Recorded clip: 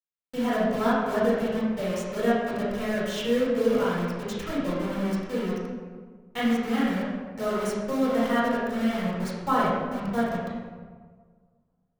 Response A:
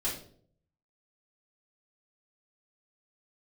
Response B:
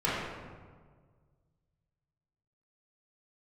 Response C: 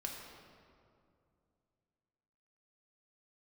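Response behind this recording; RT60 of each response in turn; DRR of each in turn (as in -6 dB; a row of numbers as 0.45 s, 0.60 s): B; 0.55 s, 1.6 s, 2.4 s; -8.5 dB, -9.5 dB, -1.0 dB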